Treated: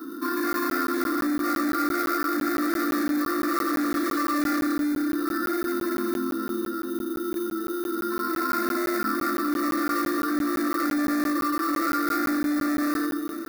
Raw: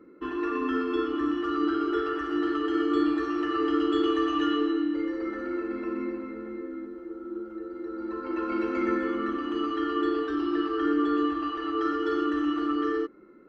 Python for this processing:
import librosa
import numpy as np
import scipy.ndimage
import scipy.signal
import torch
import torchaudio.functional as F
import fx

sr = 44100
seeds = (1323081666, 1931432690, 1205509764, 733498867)

p1 = fx.room_shoebox(x, sr, seeds[0], volume_m3=2600.0, walls='furnished', distance_m=3.3)
p2 = fx.sample_hold(p1, sr, seeds[1], rate_hz=3300.0, jitter_pct=0)
p3 = p1 + (p2 * 10.0 ** (-5.0 / 20.0))
p4 = 10.0 ** (-15.5 / 20.0) * np.tanh(p3 / 10.0 ** (-15.5 / 20.0))
p5 = fx.fixed_phaser(p4, sr, hz=2100.0, stages=6)
p6 = np.clip(p5, -10.0 ** (-25.0 / 20.0), 10.0 ** (-25.0 / 20.0))
p7 = scipy.signal.sosfilt(scipy.signal.ellip(4, 1.0, 40, 220.0, 'highpass', fs=sr, output='sos'), p6)
p8 = fx.high_shelf(p7, sr, hz=2600.0, db=8.5)
p9 = fx.fixed_phaser(p8, sr, hz=610.0, stages=8)
p10 = p9 + 10.0 ** (-21.5 / 20.0) * np.pad(p9, (int(504 * sr / 1000.0), 0))[:len(p9)]
p11 = fx.buffer_crackle(p10, sr, first_s=0.53, period_s=0.17, block=512, kind='zero')
p12 = fx.env_flatten(p11, sr, amount_pct=50)
y = p12 * 10.0 ** (4.0 / 20.0)